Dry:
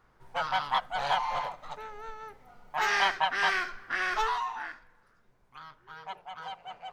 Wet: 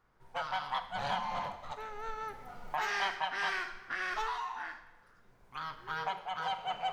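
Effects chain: 0.8–1.72 octaver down 2 oct, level +3 dB; recorder AGC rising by 10 dB/s; Schroeder reverb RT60 0.94 s, combs from 33 ms, DRR 10 dB; gain -7.5 dB

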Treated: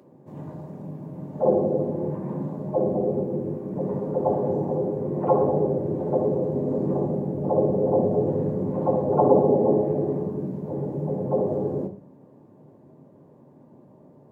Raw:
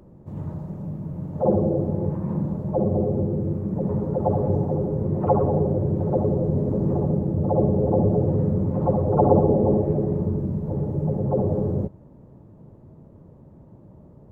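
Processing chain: HPF 230 Hz 12 dB/oct; notch 1300 Hz, Q 10; on a send: reverb RT60 0.40 s, pre-delay 4 ms, DRR 5 dB

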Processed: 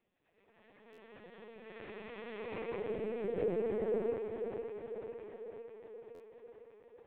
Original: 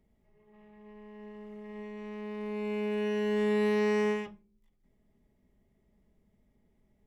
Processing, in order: noise vocoder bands 16; treble ducked by the level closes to 560 Hz, closed at -28 dBFS; on a send: thinning echo 0.505 s, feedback 71%, high-pass 180 Hz, level -6 dB; on the sum: LPC vocoder at 8 kHz pitch kept; tilt +3.5 dB/oct; stuck buffer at 0.92/6.14, samples 512, times 4; attack slew limiter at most 210 dB/s

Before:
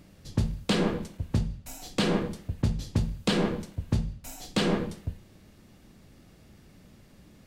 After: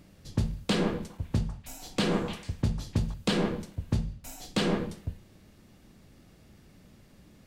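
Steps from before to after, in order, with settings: 0.95–3.14 delay with a stepping band-pass 0.149 s, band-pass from 1000 Hz, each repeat 1.4 oct, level -5.5 dB; gain -1.5 dB

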